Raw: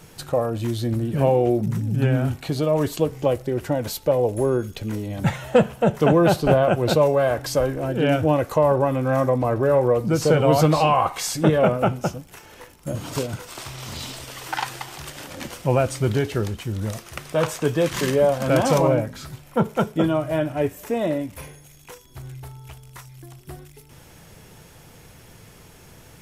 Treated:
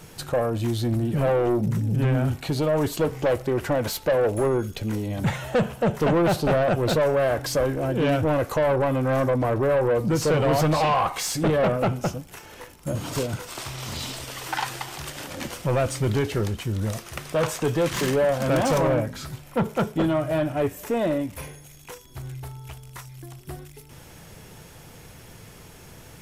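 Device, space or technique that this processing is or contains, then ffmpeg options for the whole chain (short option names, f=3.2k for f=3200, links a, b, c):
saturation between pre-emphasis and de-emphasis: -filter_complex "[0:a]asettb=1/sr,asplit=3[a][b][c];[a]atrim=end=2.994[d];[b]atrim=start=2.99:end=4.48,asetpts=PTS-STARTPTS,afade=t=in:d=0.004:c=qsin,afade=t=out:st=1.486:d=0.004:c=qsin,equalizer=f=1.3k:w=0.5:g=5[e];[c]atrim=start=4.476[f];[d][e]acrossfade=d=0.004:c1=hsin:c2=qsin[g];[g][f]acrossfade=d=0.004:c1=qsin:c2=hsin,highshelf=f=6k:g=10.5,asoftclip=type=tanh:threshold=-18dB,highshelf=f=6k:g=-10.5,volume=1.5dB"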